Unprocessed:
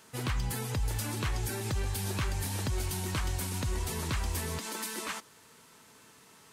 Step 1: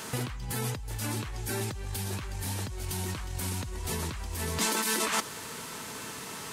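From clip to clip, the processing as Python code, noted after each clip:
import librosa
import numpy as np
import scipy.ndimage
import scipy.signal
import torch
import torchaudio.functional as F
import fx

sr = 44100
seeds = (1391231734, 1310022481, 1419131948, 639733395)

y = fx.over_compress(x, sr, threshold_db=-42.0, ratio=-1.0)
y = F.gain(torch.from_numpy(y), 8.5).numpy()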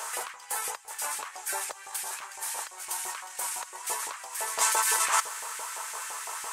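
y = fx.graphic_eq(x, sr, hz=(125, 250, 500, 1000, 4000, 8000), db=(-6, -9, 5, 5, -5, 8))
y = fx.filter_lfo_highpass(y, sr, shape='saw_up', hz=5.9, low_hz=610.0, high_hz=2000.0, q=1.4)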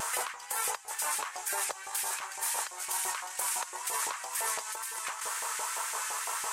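y = fx.over_compress(x, sr, threshold_db=-33.0, ratio=-1.0)
y = fx.vibrato(y, sr, rate_hz=2.1, depth_cents=39.0)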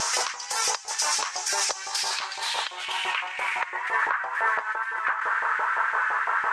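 y = fx.filter_sweep_lowpass(x, sr, from_hz=5600.0, to_hz=1600.0, start_s=1.81, end_s=4.15, q=4.1)
y = F.gain(torch.from_numpy(y), 6.0).numpy()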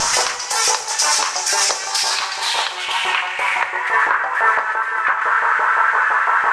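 y = fx.echo_feedback(x, sr, ms=130, feedback_pct=59, wet_db=-15)
y = fx.room_shoebox(y, sr, seeds[0], volume_m3=100.0, walls='mixed', distance_m=0.37)
y = F.gain(torch.from_numpy(y), 8.0).numpy()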